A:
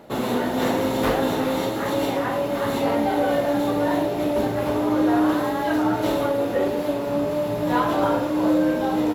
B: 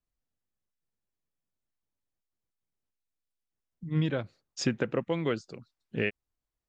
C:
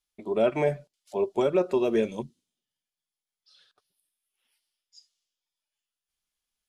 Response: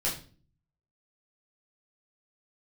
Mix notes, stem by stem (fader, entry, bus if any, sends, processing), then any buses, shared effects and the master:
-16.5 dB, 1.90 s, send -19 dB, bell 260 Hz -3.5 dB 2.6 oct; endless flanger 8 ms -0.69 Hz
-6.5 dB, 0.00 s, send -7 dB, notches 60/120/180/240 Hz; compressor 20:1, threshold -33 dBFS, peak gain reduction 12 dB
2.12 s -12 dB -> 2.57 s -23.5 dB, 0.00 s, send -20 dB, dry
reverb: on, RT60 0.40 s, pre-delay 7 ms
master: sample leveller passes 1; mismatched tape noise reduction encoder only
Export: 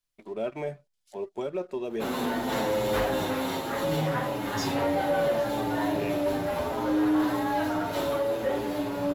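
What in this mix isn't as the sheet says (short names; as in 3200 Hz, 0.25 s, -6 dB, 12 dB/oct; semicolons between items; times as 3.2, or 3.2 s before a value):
stem A -16.5 dB -> -4.5 dB; stem C: send off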